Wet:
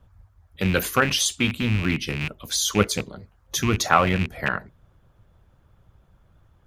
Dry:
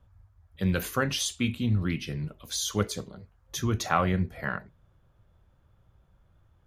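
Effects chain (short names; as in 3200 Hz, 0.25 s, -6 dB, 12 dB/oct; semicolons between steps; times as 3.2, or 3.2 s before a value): rattling part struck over -32 dBFS, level -24 dBFS; harmonic-percussive split percussive +7 dB; gain +2 dB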